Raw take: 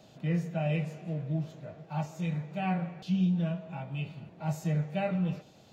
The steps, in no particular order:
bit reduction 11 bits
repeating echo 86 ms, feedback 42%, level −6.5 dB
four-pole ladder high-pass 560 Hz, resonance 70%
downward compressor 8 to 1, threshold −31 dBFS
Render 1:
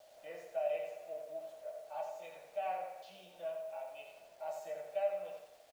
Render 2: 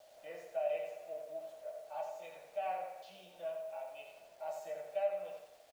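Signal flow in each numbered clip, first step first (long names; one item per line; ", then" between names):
four-pole ladder high-pass, then downward compressor, then bit reduction, then repeating echo
four-pole ladder high-pass, then bit reduction, then downward compressor, then repeating echo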